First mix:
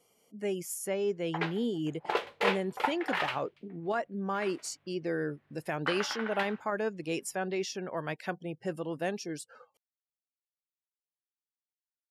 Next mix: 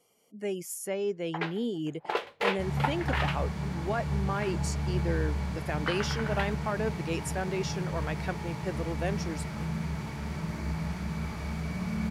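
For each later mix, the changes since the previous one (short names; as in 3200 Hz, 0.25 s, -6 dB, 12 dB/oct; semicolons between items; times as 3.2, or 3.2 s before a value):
second sound: unmuted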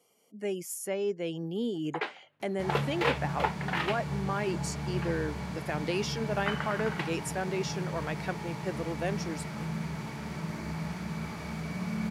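first sound: entry +0.60 s; master: add HPF 130 Hz 12 dB/oct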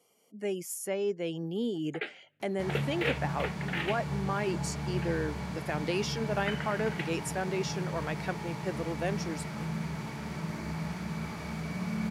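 first sound: add fixed phaser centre 2400 Hz, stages 4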